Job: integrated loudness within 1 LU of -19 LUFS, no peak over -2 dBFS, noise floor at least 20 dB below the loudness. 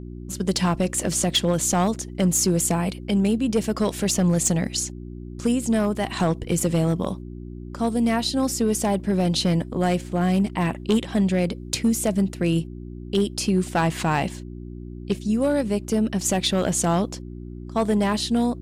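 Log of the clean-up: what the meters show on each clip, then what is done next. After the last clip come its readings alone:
clipped samples 0.9%; clipping level -13.5 dBFS; hum 60 Hz; highest harmonic 360 Hz; hum level -35 dBFS; loudness -23.0 LUFS; peak level -13.5 dBFS; loudness target -19.0 LUFS
-> clip repair -13.5 dBFS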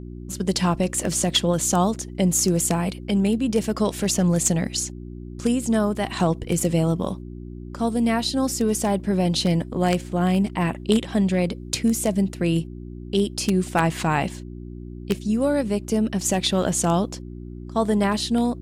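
clipped samples 0.0%; hum 60 Hz; highest harmonic 360 Hz; hum level -35 dBFS
-> de-hum 60 Hz, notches 6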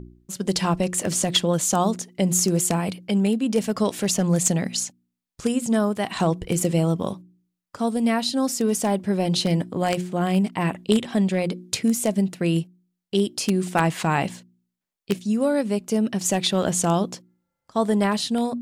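hum not found; loudness -23.0 LUFS; peak level -4.5 dBFS; loudness target -19.0 LUFS
-> trim +4 dB; peak limiter -2 dBFS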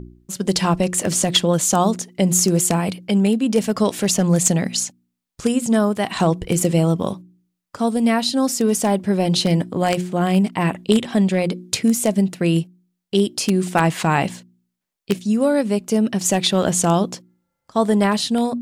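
loudness -19.0 LUFS; peak level -2.0 dBFS; noise floor -78 dBFS

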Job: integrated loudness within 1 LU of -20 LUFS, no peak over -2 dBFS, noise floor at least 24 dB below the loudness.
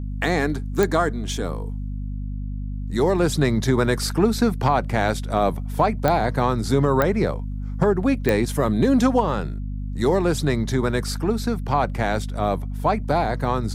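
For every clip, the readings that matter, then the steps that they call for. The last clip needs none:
clicks found 4; hum 50 Hz; highest harmonic 250 Hz; hum level -26 dBFS; loudness -22.5 LUFS; peak level -3.0 dBFS; loudness target -20.0 LUFS
-> de-click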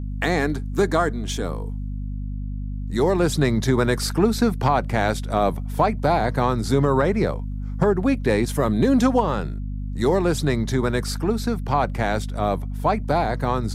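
clicks found 0; hum 50 Hz; highest harmonic 250 Hz; hum level -26 dBFS
-> de-hum 50 Hz, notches 5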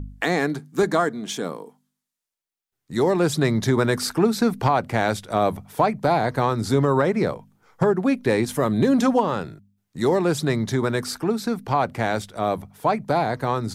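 hum not found; loudness -22.5 LUFS; peak level -7.5 dBFS; loudness target -20.0 LUFS
-> trim +2.5 dB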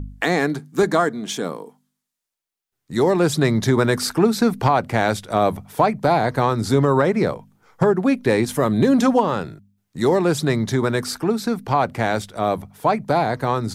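loudness -20.0 LUFS; peak level -5.0 dBFS; noise floor -81 dBFS

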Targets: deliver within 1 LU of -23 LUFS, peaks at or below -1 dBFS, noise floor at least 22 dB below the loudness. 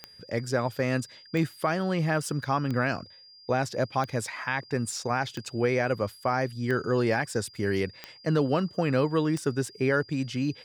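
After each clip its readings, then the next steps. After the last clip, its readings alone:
clicks found 8; steady tone 4.8 kHz; tone level -50 dBFS; loudness -28.5 LUFS; peak level -13.5 dBFS; loudness target -23.0 LUFS
-> de-click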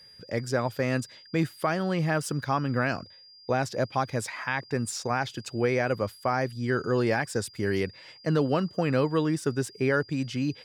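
clicks found 0; steady tone 4.8 kHz; tone level -50 dBFS
-> band-stop 4.8 kHz, Q 30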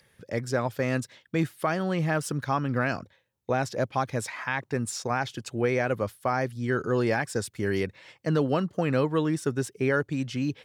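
steady tone not found; loudness -28.5 LUFS; peak level -13.5 dBFS; loudness target -23.0 LUFS
-> trim +5.5 dB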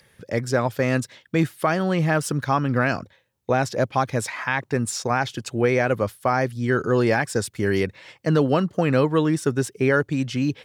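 loudness -23.0 LUFS; peak level -8.0 dBFS; noise floor -63 dBFS

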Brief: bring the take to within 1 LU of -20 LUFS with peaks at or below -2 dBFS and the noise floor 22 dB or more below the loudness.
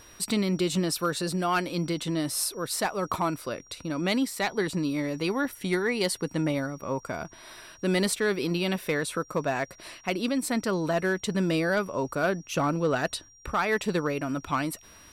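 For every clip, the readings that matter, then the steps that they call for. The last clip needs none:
clipped samples 0.3%; clipping level -18.0 dBFS; steady tone 5.7 kHz; tone level -53 dBFS; loudness -28.5 LUFS; peak level -18.0 dBFS; loudness target -20.0 LUFS
-> clip repair -18 dBFS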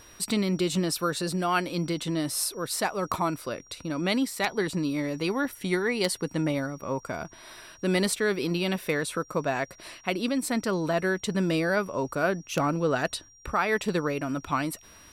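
clipped samples 0.0%; steady tone 5.7 kHz; tone level -53 dBFS
-> band-stop 5.7 kHz, Q 30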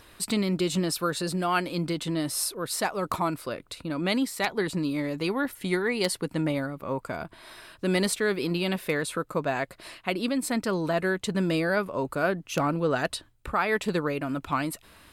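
steady tone not found; loudness -28.5 LUFS; peak level -9.0 dBFS; loudness target -20.0 LUFS
-> trim +8.5 dB; peak limiter -2 dBFS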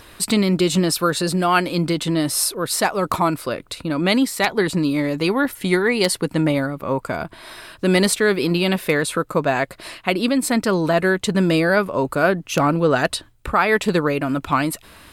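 loudness -20.0 LUFS; peak level -2.0 dBFS; noise floor -49 dBFS

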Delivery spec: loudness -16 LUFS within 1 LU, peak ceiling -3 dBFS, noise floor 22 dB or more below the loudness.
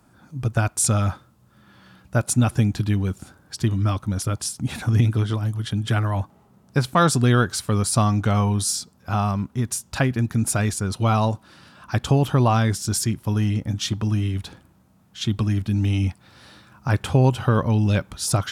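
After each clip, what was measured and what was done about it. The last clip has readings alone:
loudness -22.5 LUFS; peak level -5.5 dBFS; loudness target -16.0 LUFS
-> trim +6.5 dB; peak limiter -3 dBFS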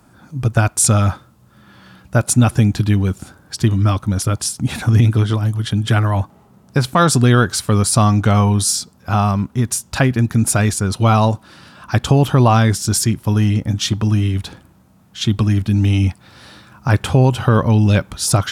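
loudness -16.0 LUFS; peak level -3.0 dBFS; noise floor -50 dBFS

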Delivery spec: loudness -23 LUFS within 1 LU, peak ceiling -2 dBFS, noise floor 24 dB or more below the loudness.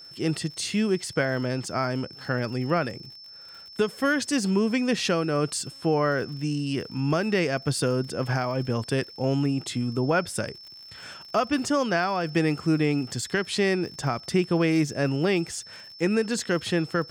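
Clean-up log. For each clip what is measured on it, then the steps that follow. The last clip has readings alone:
tick rate 55 per s; steady tone 5.3 kHz; tone level -43 dBFS; loudness -26.0 LUFS; peak level -13.0 dBFS; loudness target -23.0 LUFS
-> de-click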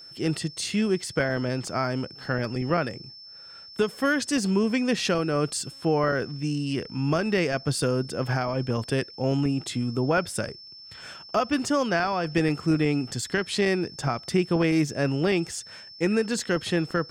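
tick rate 0.76 per s; steady tone 5.3 kHz; tone level -43 dBFS
-> band-stop 5.3 kHz, Q 30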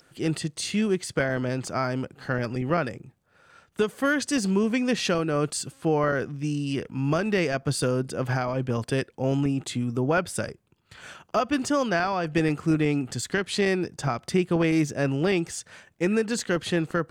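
steady tone not found; loudness -26.5 LUFS; peak level -12.5 dBFS; loudness target -23.0 LUFS
-> trim +3.5 dB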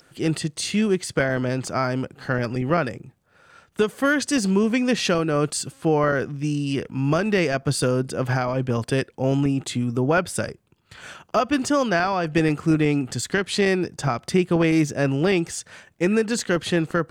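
loudness -23.0 LUFS; peak level -9.0 dBFS; noise floor -62 dBFS

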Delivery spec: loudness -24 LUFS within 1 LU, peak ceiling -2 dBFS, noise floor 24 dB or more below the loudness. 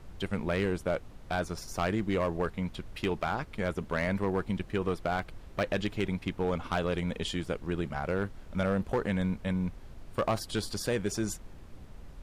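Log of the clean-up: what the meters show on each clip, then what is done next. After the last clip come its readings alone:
clipped samples 0.9%; clipping level -22.0 dBFS; noise floor -49 dBFS; noise floor target -57 dBFS; loudness -32.5 LUFS; peak level -22.0 dBFS; loudness target -24.0 LUFS
-> clip repair -22 dBFS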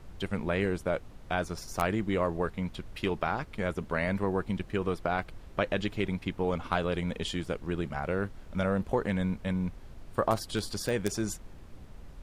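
clipped samples 0.0%; noise floor -49 dBFS; noise floor target -56 dBFS
-> noise print and reduce 7 dB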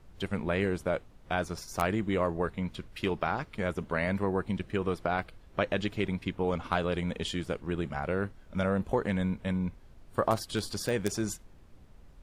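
noise floor -55 dBFS; noise floor target -56 dBFS
-> noise print and reduce 6 dB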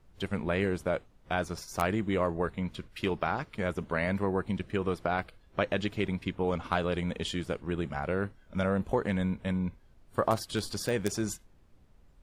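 noise floor -61 dBFS; loudness -32.0 LUFS; peak level -13.0 dBFS; loudness target -24.0 LUFS
-> trim +8 dB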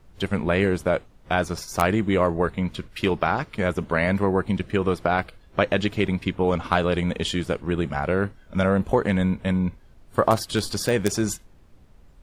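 loudness -24.0 LUFS; peak level -5.0 dBFS; noise floor -53 dBFS

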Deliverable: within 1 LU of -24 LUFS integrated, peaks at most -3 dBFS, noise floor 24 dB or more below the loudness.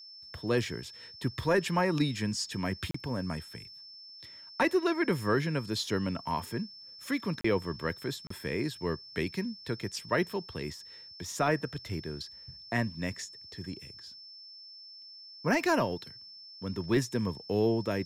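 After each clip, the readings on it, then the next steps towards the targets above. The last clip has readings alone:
dropouts 3; longest dropout 34 ms; steady tone 5.3 kHz; tone level -47 dBFS; loudness -32.0 LUFS; peak level -17.0 dBFS; loudness target -24.0 LUFS
-> interpolate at 2.91/7.41/8.27 s, 34 ms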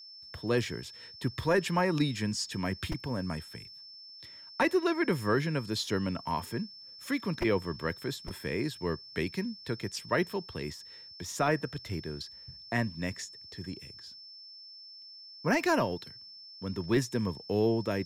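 dropouts 0; steady tone 5.3 kHz; tone level -47 dBFS
-> band-stop 5.3 kHz, Q 30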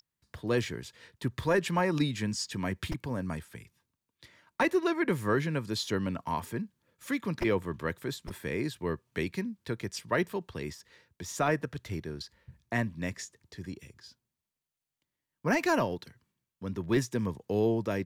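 steady tone not found; loudness -32.0 LUFS; peak level -17.0 dBFS; loudness target -24.0 LUFS
-> trim +8 dB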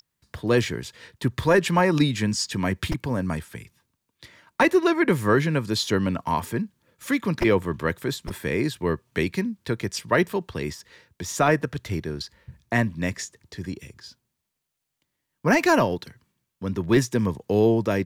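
loudness -24.0 LUFS; peak level -9.0 dBFS; noise floor -81 dBFS

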